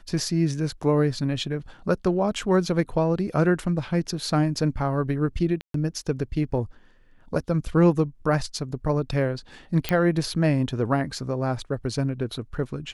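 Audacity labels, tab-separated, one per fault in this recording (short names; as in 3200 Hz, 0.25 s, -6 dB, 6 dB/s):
5.610000	5.740000	gap 0.133 s
9.890000	9.890000	pop -8 dBFS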